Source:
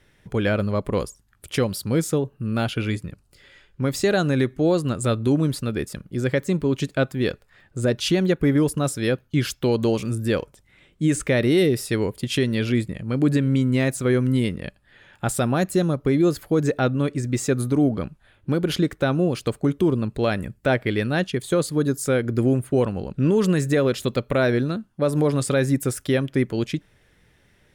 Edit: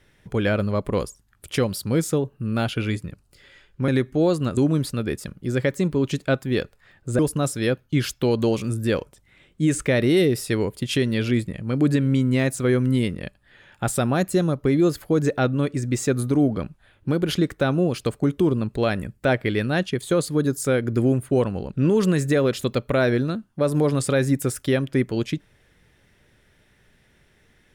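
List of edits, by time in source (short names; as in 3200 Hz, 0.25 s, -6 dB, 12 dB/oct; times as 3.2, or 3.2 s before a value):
3.88–4.32 cut
5.01–5.26 cut
7.88–8.6 cut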